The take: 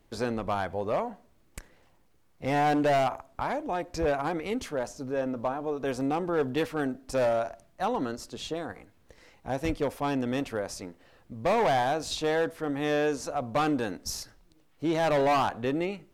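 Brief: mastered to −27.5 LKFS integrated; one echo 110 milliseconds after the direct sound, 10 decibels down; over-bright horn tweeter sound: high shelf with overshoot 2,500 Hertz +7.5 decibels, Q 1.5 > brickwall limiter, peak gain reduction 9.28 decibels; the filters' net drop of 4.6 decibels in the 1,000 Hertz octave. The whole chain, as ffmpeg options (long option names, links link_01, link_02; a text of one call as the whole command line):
ffmpeg -i in.wav -af "equalizer=frequency=1000:width_type=o:gain=-6,highshelf=frequency=2500:width_type=q:width=1.5:gain=7.5,aecho=1:1:110:0.316,volume=4.5dB,alimiter=limit=-17.5dB:level=0:latency=1" out.wav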